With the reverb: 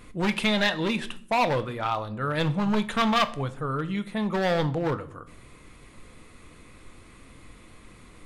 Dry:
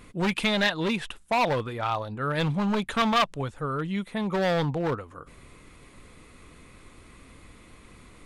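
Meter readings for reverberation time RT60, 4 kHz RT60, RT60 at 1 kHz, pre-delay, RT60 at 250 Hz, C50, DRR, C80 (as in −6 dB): 0.55 s, 0.40 s, 0.45 s, 4 ms, 0.85 s, 17.0 dB, 10.5 dB, 20.5 dB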